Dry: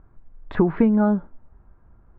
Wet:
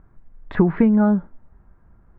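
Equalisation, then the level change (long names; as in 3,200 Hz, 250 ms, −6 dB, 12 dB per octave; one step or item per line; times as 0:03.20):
parametric band 180 Hz +4.5 dB 0.53 octaves
parametric band 1,900 Hz +4.5 dB 0.55 octaves
0.0 dB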